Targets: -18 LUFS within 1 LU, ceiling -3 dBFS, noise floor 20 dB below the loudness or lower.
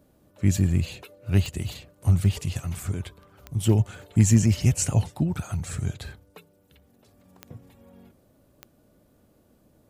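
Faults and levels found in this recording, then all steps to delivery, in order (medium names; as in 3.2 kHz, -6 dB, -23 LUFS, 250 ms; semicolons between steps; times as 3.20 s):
clicks found 4; loudness -25.0 LUFS; peak level -7.0 dBFS; loudness target -18.0 LUFS
-> de-click; trim +7 dB; peak limiter -3 dBFS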